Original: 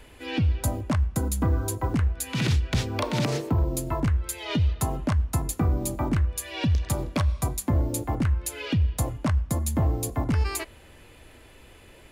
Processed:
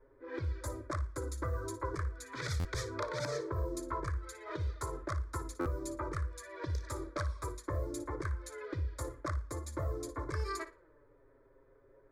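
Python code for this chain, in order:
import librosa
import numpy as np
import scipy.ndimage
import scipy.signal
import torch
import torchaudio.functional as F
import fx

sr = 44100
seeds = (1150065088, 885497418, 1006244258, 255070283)

p1 = fx.env_lowpass(x, sr, base_hz=690.0, full_db=-18.5)
p2 = fx.low_shelf(p1, sr, hz=250.0, db=-11.5)
p3 = fx.env_flanger(p2, sr, rest_ms=7.8, full_db=-20.0)
p4 = fx.fixed_phaser(p3, sr, hz=760.0, stages=6)
p5 = p4 + fx.room_flutter(p4, sr, wall_m=9.9, rt60_s=0.26, dry=0)
y = fx.buffer_glitch(p5, sr, at_s=(2.59, 5.6), block=512, repeats=4)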